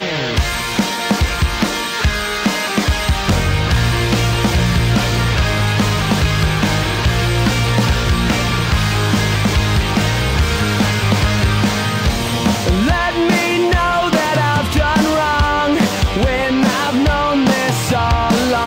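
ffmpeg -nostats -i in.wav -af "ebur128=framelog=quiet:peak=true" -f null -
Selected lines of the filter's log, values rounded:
Integrated loudness:
  I:         -15.5 LUFS
  Threshold: -25.5 LUFS
Loudness range:
  LRA:         1.5 LU
  Threshold: -35.4 LUFS
  LRA low:   -16.3 LUFS
  LRA high:  -14.8 LUFS
True peak:
  Peak:       -7.0 dBFS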